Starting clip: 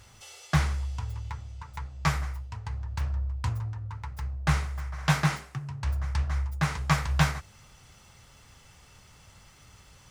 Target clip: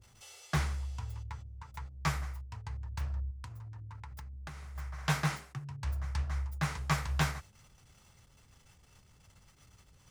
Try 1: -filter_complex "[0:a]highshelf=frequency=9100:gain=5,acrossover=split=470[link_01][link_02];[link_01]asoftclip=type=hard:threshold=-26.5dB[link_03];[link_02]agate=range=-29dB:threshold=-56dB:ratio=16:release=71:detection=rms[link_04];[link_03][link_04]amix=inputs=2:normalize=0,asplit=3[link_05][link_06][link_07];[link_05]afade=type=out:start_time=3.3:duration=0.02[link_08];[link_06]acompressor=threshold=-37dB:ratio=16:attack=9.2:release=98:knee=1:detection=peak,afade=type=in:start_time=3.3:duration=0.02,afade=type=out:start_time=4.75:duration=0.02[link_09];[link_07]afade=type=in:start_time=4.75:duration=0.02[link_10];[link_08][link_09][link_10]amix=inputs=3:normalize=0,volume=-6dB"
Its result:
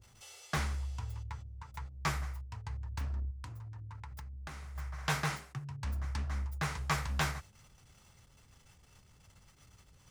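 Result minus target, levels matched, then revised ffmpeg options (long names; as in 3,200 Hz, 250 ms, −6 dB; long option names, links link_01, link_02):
hard clipping: distortion +10 dB
-filter_complex "[0:a]highshelf=frequency=9100:gain=5,acrossover=split=470[link_01][link_02];[link_01]asoftclip=type=hard:threshold=-19dB[link_03];[link_02]agate=range=-29dB:threshold=-56dB:ratio=16:release=71:detection=rms[link_04];[link_03][link_04]amix=inputs=2:normalize=0,asplit=3[link_05][link_06][link_07];[link_05]afade=type=out:start_time=3.3:duration=0.02[link_08];[link_06]acompressor=threshold=-37dB:ratio=16:attack=9.2:release=98:knee=1:detection=peak,afade=type=in:start_time=3.3:duration=0.02,afade=type=out:start_time=4.75:duration=0.02[link_09];[link_07]afade=type=in:start_time=4.75:duration=0.02[link_10];[link_08][link_09][link_10]amix=inputs=3:normalize=0,volume=-6dB"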